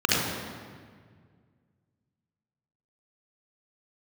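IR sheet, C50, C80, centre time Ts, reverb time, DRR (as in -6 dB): -4.0 dB, 0.0 dB, 115 ms, 1.8 s, -4.5 dB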